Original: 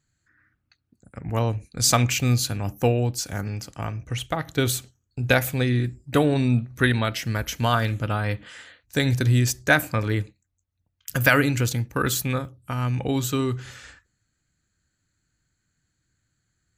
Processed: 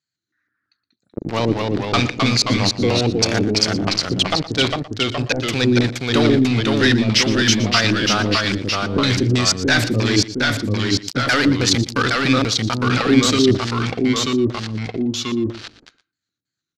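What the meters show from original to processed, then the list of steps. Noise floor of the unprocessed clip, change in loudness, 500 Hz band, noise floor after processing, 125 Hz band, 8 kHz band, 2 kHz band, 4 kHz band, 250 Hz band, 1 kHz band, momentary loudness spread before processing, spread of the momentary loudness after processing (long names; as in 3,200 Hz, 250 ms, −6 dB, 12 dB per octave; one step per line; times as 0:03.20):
−76 dBFS, +6.0 dB, +6.5 dB, −84 dBFS, +2.0 dB, +5.0 dB, +5.5 dB, +13.0 dB, +9.5 dB, +5.5 dB, 12 LU, 7 LU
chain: high-pass filter 160 Hz 12 dB per octave
tilt shelving filter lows −3 dB, about 1,200 Hz
leveller curve on the samples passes 5
reversed playback
downward compressor, threshold −15 dBFS, peak gain reduction 11 dB
reversed playback
auto-filter low-pass square 3.1 Hz 350–4,900 Hz
delay with pitch and tempo change per echo 146 ms, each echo −1 semitone, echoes 2
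on a send: single-tap delay 118 ms −16 dB
on the sum: level −1.5 dB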